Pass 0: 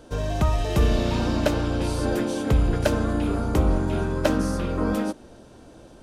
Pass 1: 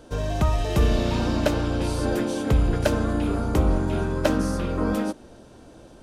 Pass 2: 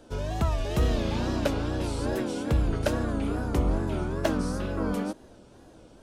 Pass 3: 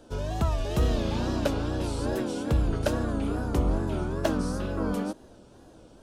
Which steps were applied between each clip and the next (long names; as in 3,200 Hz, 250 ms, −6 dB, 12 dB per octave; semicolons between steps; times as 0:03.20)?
no processing that can be heard
tape wow and flutter 130 cents; level −4.5 dB
parametric band 2,100 Hz −4 dB 0.51 octaves